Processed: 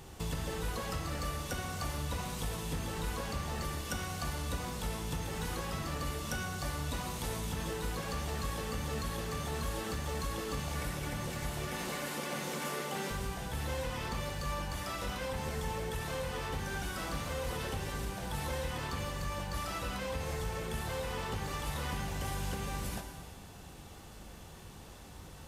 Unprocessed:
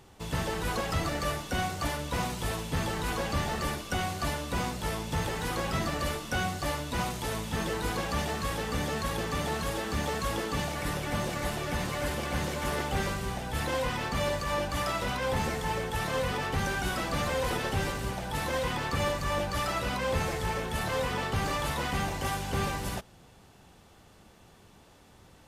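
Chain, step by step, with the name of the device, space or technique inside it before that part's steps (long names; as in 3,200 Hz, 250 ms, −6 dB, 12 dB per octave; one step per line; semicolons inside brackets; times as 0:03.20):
0:11.67–0:13.11: high-pass filter 180 Hz 24 dB per octave
ASMR close-microphone chain (low-shelf EQ 110 Hz +6 dB; downward compressor 10 to 1, threshold −38 dBFS, peak gain reduction 16.5 dB; high-shelf EQ 6,200 Hz +6 dB)
reverb whose tail is shaped and stops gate 490 ms falling, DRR 3 dB
level +2 dB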